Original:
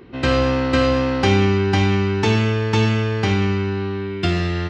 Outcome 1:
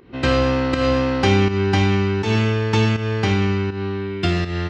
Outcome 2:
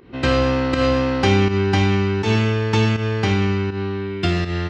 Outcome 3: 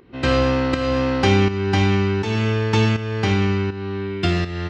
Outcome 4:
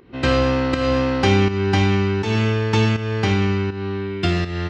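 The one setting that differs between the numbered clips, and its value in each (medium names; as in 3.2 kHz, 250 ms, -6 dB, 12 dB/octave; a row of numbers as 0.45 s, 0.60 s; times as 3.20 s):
volume shaper, release: 197 ms, 130 ms, 467 ms, 296 ms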